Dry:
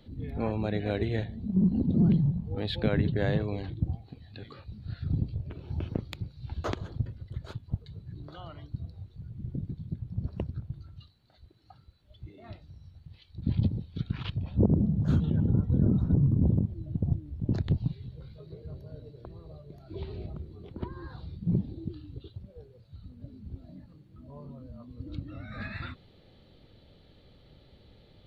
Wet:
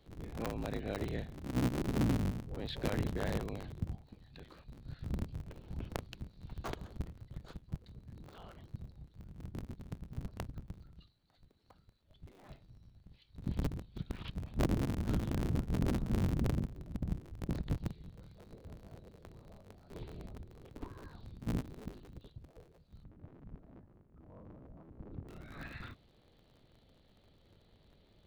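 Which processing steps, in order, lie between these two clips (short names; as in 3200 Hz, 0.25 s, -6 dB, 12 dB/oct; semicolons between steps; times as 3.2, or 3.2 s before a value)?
cycle switcher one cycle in 3, inverted; 23.03–25.27 LPF 1700 Hz -> 1100 Hz 12 dB/oct; gain -8.5 dB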